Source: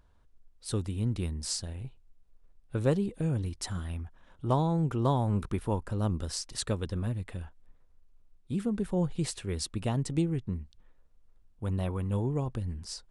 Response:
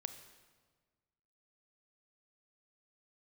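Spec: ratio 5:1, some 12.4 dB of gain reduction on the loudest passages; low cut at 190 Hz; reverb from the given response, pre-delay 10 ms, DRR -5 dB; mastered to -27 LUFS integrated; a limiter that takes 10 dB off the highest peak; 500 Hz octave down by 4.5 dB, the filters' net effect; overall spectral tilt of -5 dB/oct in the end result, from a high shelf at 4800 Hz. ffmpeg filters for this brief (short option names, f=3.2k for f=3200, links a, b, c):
-filter_complex "[0:a]highpass=190,equalizer=f=500:t=o:g=-5.5,highshelf=f=4.8k:g=-4,acompressor=threshold=-39dB:ratio=5,alimiter=level_in=9.5dB:limit=-24dB:level=0:latency=1,volume=-9.5dB,asplit=2[a][b];[1:a]atrim=start_sample=2205,adelay=10[c];[b][c]afir=irnorm=-1:irlink=0,volume=7.5dB[d];[a][d]amix=inputs=2:normalize=0,volume=12dB"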